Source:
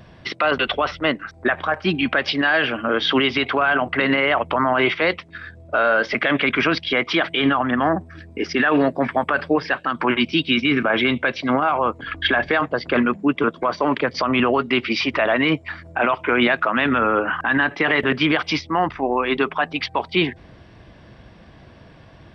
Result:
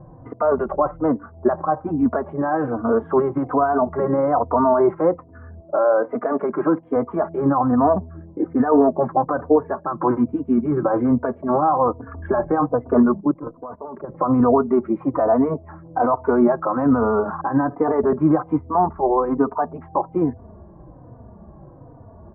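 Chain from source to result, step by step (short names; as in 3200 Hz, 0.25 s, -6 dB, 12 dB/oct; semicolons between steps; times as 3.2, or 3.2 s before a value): 5.6–6.96 HPF 230 Hz 12 dB/oct; 13.2–14.09 level quantiser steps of 17 dB; steep low-pass 1100 Hz 36 dB/oct; endless flanger 3.3 ms -1.2 Hz; gain +6 dB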